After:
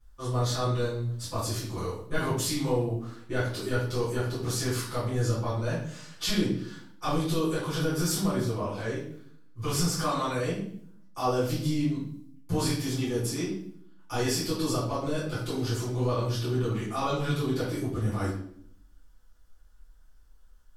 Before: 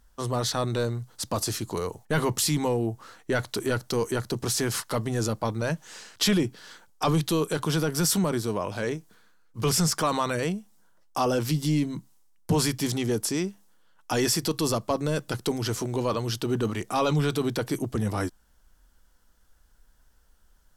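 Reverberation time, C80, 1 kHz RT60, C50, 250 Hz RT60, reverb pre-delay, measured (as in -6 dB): 0.60 s, 7.0 dB, 0.55 s, 3.0 dB, 0.90 s, 6 ms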